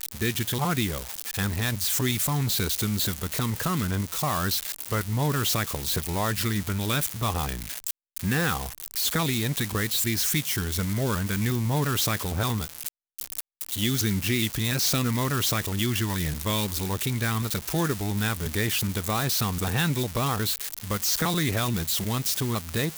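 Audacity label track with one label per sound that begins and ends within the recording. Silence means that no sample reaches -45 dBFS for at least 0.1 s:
8.160000	12.880000	sound
13.190000	13.410000	sound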